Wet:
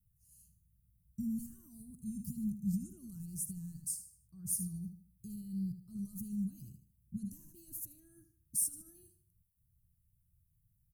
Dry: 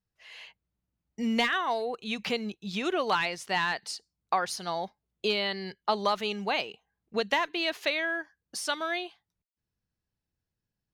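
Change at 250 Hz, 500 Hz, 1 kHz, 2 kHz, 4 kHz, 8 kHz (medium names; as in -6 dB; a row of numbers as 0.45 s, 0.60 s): -4.0 dB, under -35 dB, under -40 dB, under -40 dB, -33.0 dB, +4.0 dB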